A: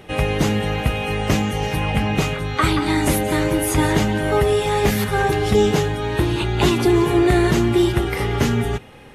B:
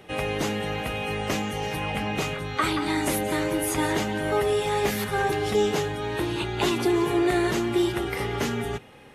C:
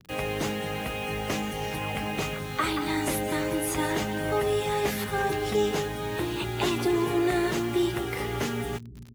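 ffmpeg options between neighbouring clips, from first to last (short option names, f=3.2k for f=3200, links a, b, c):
-filter_complex "[0:a]lowshelf=f=84:g=-10,acrossover=split=270[a][b];[a]alimiter=limit=-23dB:level=0:latency=1[c];[c][b]amix=inputs=2:normalize=0,volume=-5dB"
-filter_complex "[0:a]acrossover=split=230[a][b];[a]aecho=1:1:269|538|807|1076|1345|1614:0.422|0.202|0.0972|0.0466|0.0224|0.0107[c];[b]acrusher=bits=6:mix=0:aa=0.000001[d];[c][d]amix=inputs=2:normalize=0,volume=-2.5dB"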